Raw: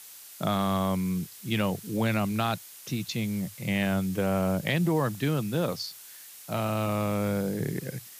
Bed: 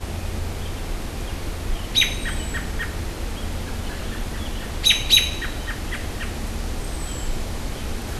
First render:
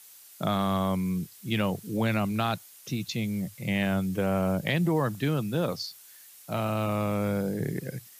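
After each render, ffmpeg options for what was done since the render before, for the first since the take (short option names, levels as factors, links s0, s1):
-af "afftdn=nr=6:nf=-48"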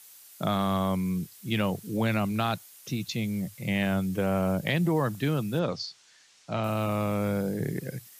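-filter_complex "[0:a]asettb=1/sr,asplit=3[s0][s1][s2];[s0]atrim=end=5.594[s3];[s1]atrim=start=5.59:end=6.64,asetpts=PTS-STARTPTS,afade=t=in:d=0.004:c=qsin,afade=t=out:st=1.046:d=0.004:c=qsin,lowpass=f=6500:w=0.5412,lowpass=f=6500:w=1.3066[s4];[s2]atrim=start=6.636[s5];[s3][s4]acrossfade=d=0.004:c1=hsin:c2=qsin[s6];[s6][s5]acrossfade=d=0.004:c1=qsin:c2=hsin"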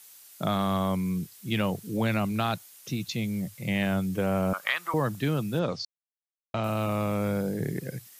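-filter_complex "[0:a]asettb=1/sr,asplit=3[s0][s1][s2];[s0]atrim=end=4.534[s3];[s1]atrim=start=4.53:end=4.94,asetpts=PTS-STARTPTS,afade=t=in:d=0.004:c=qsin,afade=t=out:st=0.406:d=0.004:c=qsin,highpass=f=1200:t=q:w=6.7[s4];[s2]atrim=start=4.936[s5];[s3][s4]acrossfade=d=0.004:c1=hsin:c2=qsin[s6];[s6][s5]acrossfade=d=0.004:c1=qsin:c2=hsin,asplit=3[s7][s8][s9];[s7]atrim=end=5.85,asetpts=PTS-STARTPTS,afade=t=out:st=5.846:d=0.004:c=hsin[s10];[s8]atrim=start=5.85:end=6.54,asetpts=PTS-STARTPTS,volume=0[s11];[s9]atrim=start=6.54,asetpts=PTS-STARTPTS,afade=t=in:d=0.004:c=hsin[s12];[s10][s11][s12]concat=n=3:v=0:a=1"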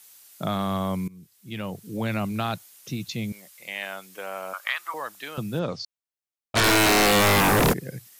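-filter_complex "[0:a]asettb=1/sr,asplit=3[s0][s1][s2];[s0]atrim=end=3.324[s3];[s1]atrim=start=3.32:end=5.38,asetpts=PTS-STARTPTS,afade=t=in:d=0.004:c=qsin,afade=t=out:st=2.056:d=0.004:c=qsin,highpass=780[s4];[s2]atrim=start=5.376[s5];[s3][s4]acrossfade=d=0.004:c1=hsin:c2=qsin[s6];[s6][s5]acrossfade=d=0.004:c1=qsin:c2=hsin,asplit=3[s7][s8][s9];[s7]afade=t=out:st=6.55:d=0.02[s10];[s8]aeval=exprs='0.168*sin(PI/2*10*val(0)/0.168)':c=same,afade=t=in:st=6.55:d=0.02,afade=t=out:st=7.72:d=0.02[s11];[s9]afade=t=in:st=7.72:d=0.02[s12];[s10][s11][s12]amix=inputs=3:normalize=0,asplit=2[s13][s14];[s13]atrim=end=1.08,asetpts=PTS-STARTPTS,afade=t=out:st=1.076:d=0.004:c=hsin:silence=0.0841395[s15];[s14]atrim=start=1.08,asetpts=PTS-STARTPTS,afade=t=in:d=1.14:silence=0.0841395[s16];[s15][s16]concat=n=2:v=0:a=1"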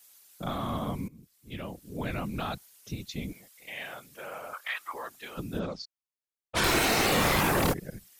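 -af "afftfilt=real='hypot(re,im)*cos(2*PI*random(0))':imag='hypot(re,im)*sin(2*PI*random(1))':win_size=512:overlap=0.75"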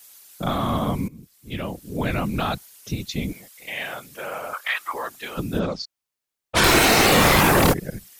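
-af "volume=2.82"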